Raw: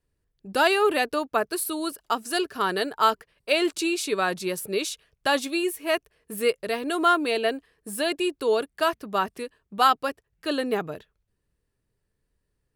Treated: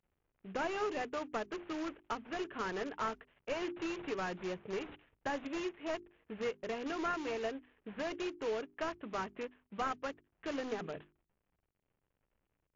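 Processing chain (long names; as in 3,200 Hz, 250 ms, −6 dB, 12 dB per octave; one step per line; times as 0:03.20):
variable-slope delta modulation 16 kbit/s
in parallel at −9 dB: wrap-around overflow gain 25.5 dB
on the sum: mains-hum notches 50/100/150/200/250/300/350/400 Hz
downward compressor 2 to 1, threshold −29 dBFS, peak gain reduction 6.5 dB
level −7.5 dB
MP3 80 kbit/s 16,000 Hz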